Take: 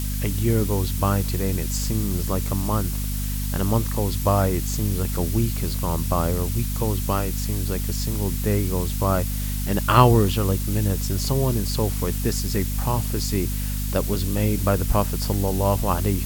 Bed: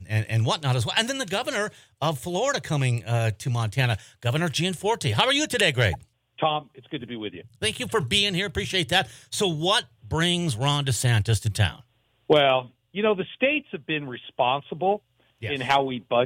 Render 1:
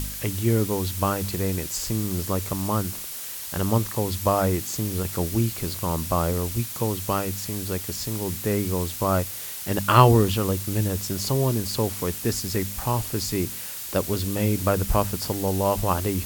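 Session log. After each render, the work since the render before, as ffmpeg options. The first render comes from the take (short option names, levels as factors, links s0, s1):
-af "bandreject=f=50:t=h:w=4,bandreject=f=100:t=h:w=4,bandreject=f=150:t=h:w=4,bandreject=f=200:t=h:w=4,bandreject=f=250:t=h:w=4"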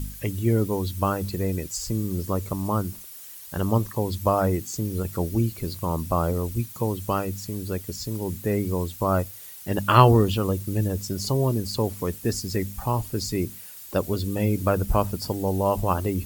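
-af "afftdn=nr=12:nf=-35"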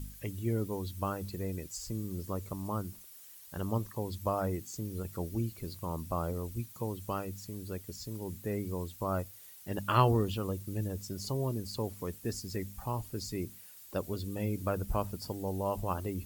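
-af "volume=0.299"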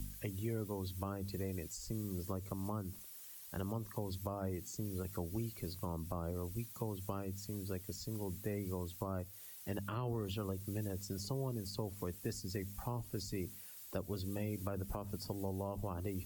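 -filter_complex "[0:a]alimiter=limit=0.0668:level=0:latency=1:release=88,acrossover=split=180|470[s0][s1][s2];[s0]acompressor=threshold=0.00794:ratio=4[s3];[s1]acompressor=threshold=0.00708:ratio=4[s4];[s2]acompressor=threshold=0.00562:ratio=4[s5];[s3][s4][s5]amix=inputs=3:normalize=0"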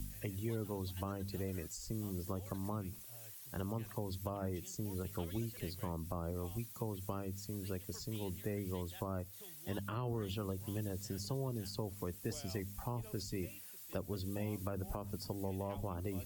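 -filter_complex "[1:a]volume=0.0168[s0];[0:a][s0]amix=inputs=2:normalize=0"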